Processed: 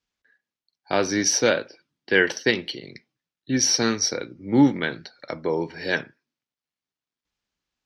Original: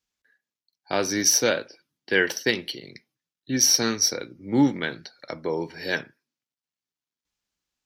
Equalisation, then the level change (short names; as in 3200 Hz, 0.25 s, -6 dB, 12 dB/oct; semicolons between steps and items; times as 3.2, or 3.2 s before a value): air absorption 89 m; +3.0 dB